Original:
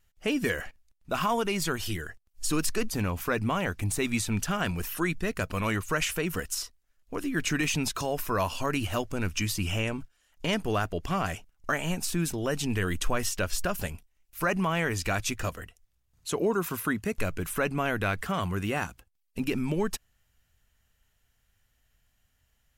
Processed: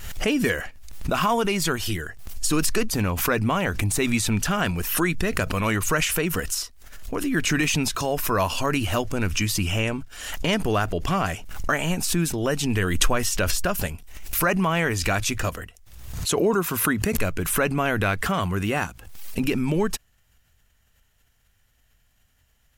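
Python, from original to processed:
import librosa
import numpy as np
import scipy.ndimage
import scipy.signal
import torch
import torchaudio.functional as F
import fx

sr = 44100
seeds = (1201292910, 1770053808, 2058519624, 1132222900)

y = fx.pre_swell(x, sr, db_per_s=55.0)
y = y * 10.0 ** (5.0 / 20.0)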